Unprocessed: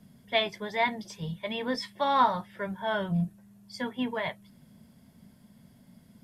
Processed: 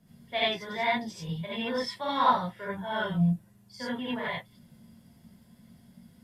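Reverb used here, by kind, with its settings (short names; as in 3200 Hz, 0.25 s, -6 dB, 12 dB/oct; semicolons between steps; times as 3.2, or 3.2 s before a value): non-linear reverb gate 0.11 s rising, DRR -7 dB; gain -7.5 dB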